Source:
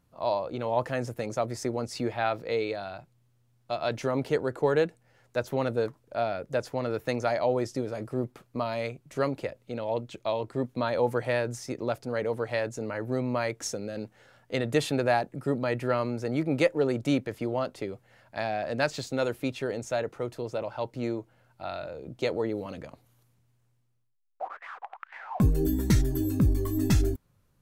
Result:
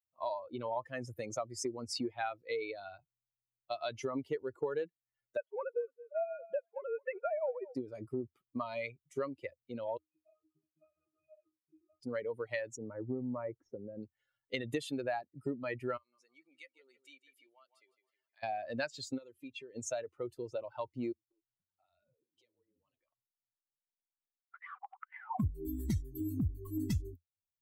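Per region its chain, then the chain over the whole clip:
0:05.37–0:07.75: three sine waves on the formant tracks + repeating echo 215 ms, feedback 21%, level −13 dB
0:09.97–0:12.00: gain into a clipping stage and back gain 30.5 dB + resonances in every octave D#, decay 0.35 s
0:12.76–0:14.03: Bessel low-pass filter 910 Hz + highs frequency-modulated by the lows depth 0.13 ms
0:15.97–0:18.43: high-pass filter 1,500 Hz 6 dB per octave + repeating echo 157 ms, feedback 46%, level −10.5 dB + downward compressor 2 to 1, threshold −53 dBFS
0:19.18–0:19.76: low-pass filter 10,000 Hz + downward compressor 2.5 to 1, threshold −40 dBFS + notch comb filter 730 Hz
0:21.12–0:24.54: downward compressor 10 to 1, threshold −44 dBFS + multiband delay without the direct sound lows, highs 190 ms, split 300 Hz + flanger 1.8 Hz, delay 3.2 ms, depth 9.2 ms, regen +46%
whole clip: spectral dynamics exaggerated over time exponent 2; parametric band 85 Hz +13 dB 0.76 octaves; downward compressor 5 to 1, threshold −43 dBFS; level +8 dB

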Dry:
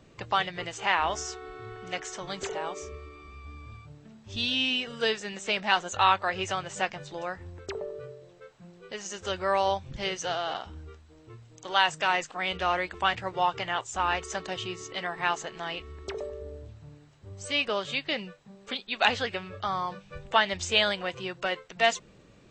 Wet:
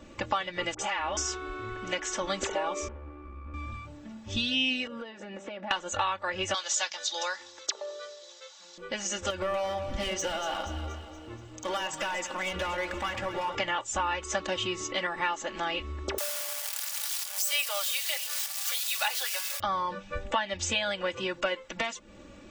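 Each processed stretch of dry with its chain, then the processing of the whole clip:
0:00.74–0:01.17: downward compressor 3 to 1, threshold −36 dBFS + all-pass dispersion highs, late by 51 ms, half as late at 1,200 Hz
0:02.88–0:03.54: drawn EQ curve 410 Hz 0 dB, 1,900 Hz −9 dB, 3,700 Hz −22 dB + tube saturation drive 45 dB, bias 0.7 + multiband upward and downward compressor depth 40%
0:04.87–0:05.71: resonant band-pass 450 Hz, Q 0.63 + downward compressor 10 to 1, threshold −41 dBFS
0:06.54–0:08.78: high-pass filter 830 Hz + flat-topped bell 4,900 Hz +15.5 dB 1.3 octaves
0:09.30–0:13.55: downward compressor 5 to 1, threshold −33 dBFS + hard clipping −32.5 dBFS + delay that swaps between a low-pass and a high-pass 119 ms, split 1,000 Hz, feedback 73%, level −8 dB
0:16.18–0:19.60: spike at every zero crossing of −19.5 dBFS + high-pass filter 680 Hz 24 dB per octave + dynamic equaliser 4,500 Hz, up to +5 dB, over −45 dBFS, Q 2.7
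whole clip: downward compressor 6 to 1, threshold −33 dBFS; parametric band 4,300 Hz −4 dB 0.32 octaves; comb filter 3.5 ms, depth 80%; level +5 dB

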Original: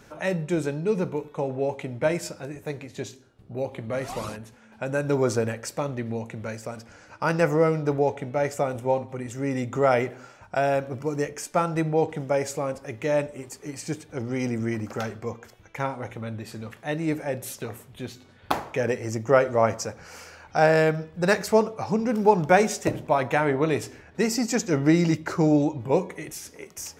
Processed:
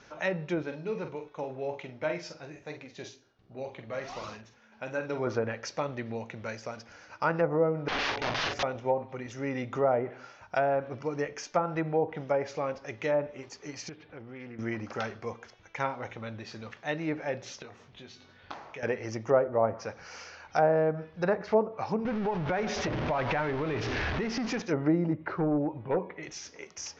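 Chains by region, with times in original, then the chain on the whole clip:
0:00.63–0:05.27: flanger 1.4 Hz, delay 2.7 ms, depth 4.6 ms, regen +74% + double-tracking delay 46 ms −8 dB
0:07.88–0:08.63: low-shelf EQ 480 Hz +9 dB + wrap-around overflow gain 23 dB + double-tracking delay 43 ms −4 dB
0:13.89–0:14.59: downward compressor 2.5 to 1, threshold −40 dBFS + low-pass filter 3,400 Hz 24 dB per octave + highs frequency-modulated by the lows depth 0.14 ms
0:17.62–0:18.83: high-shelf EQ 9,500 Hz −6 dB + downward compressor 2 to 1, threshold −46 dBFS + double-tracking delay 21 ms −7 dB
0:22.05–0:24.62: converter with a step at zero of −23 dBFS + low-shelf EQ 120 Hz +10.5 dB + downward compressor 16 to 1, threshold −21 dBFS
0:25.13–0:26.23: hard clipping −16 dBFS + high-frequency loss of the air 390 metres
whole clip: Butterworth low-pass 6,400 Hz 72 dB per octave; treble cut that deepens with the level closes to 790 Hz, closed at −17.5 dBFS; low-shelf EQ 480 Hz −8.5 dB

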